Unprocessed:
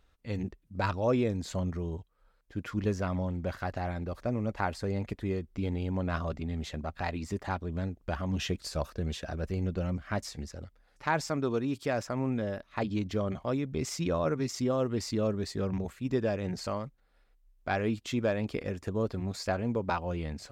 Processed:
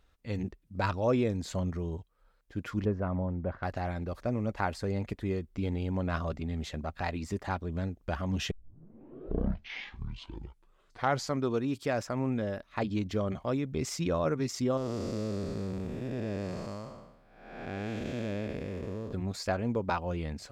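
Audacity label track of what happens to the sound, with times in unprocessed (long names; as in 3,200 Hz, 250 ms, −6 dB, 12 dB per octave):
2.850000	3.630000	low-pass filter 1,300 Hz
8.510000	8.510000	tape start 3.00 s
14.770000	19.130000	spectrum smeared in time width 439 ms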